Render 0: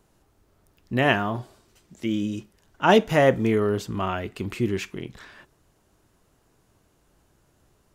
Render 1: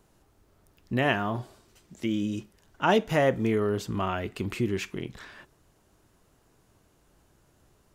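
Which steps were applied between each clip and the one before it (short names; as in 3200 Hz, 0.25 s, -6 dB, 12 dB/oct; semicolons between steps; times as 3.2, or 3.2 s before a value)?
compressor 1.5:1, threshold -28 dBFS, peak gain reduction 6 dB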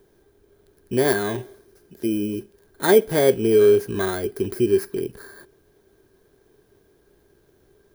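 FFT order left unsorted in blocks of 16 samples; small resonant body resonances 400/1600 Hz, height 16 dB, ringing for 40 ms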